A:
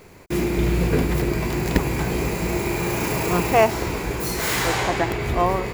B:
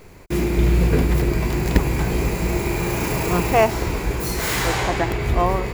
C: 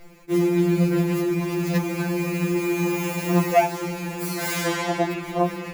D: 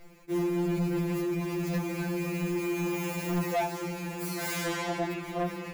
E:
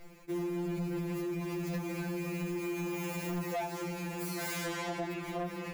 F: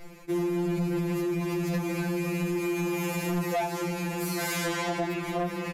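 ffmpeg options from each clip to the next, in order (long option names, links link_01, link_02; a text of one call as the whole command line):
ffmpeg -i in.wav -af "lowshelf=frequency=62:gain=11.5" out.wav
ffmpeg -i in.wav -af "afftfilt=real='re*2.83*eq(mod(b,8),0)':imag='im*2.83*eq(mod(b,8),0)':win_size=2048:overlap=0.75,volume=-1.5dB" out.wav
ffmpeg -i in.wav -af "asoftclip=type=tanh:threshold=-18dB,volume=-5.5dB" out.wav
ffmpeg -i in.wav -af "acompressor=threshold=-35dB:ratio=3" out.wav
ffmpeg -i in.wav -af "aresample=32000,aresample=44100,volume=7dB" out.wav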